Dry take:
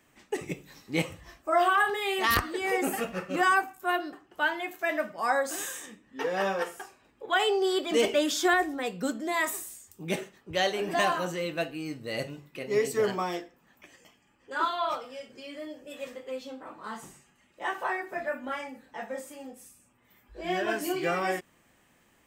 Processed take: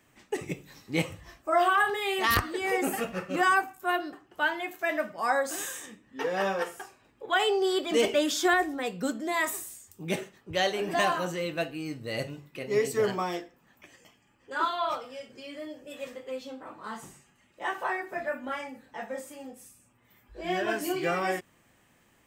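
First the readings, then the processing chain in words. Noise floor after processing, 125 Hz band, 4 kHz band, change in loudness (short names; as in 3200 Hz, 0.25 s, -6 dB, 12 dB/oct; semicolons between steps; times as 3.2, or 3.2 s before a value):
-65 dBFS, +1.5 dB, 0.0 dB, 0.0 dB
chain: bell 110 Hz +5 dB 0.58 oct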